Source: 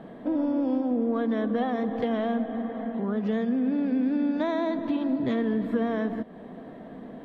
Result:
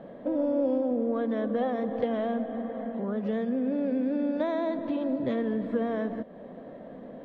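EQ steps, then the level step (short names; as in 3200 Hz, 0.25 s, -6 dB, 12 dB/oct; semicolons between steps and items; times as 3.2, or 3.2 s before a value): air absorption 68 m; bell 550 Hz +14 dB 0.24 oct; -3.5 dB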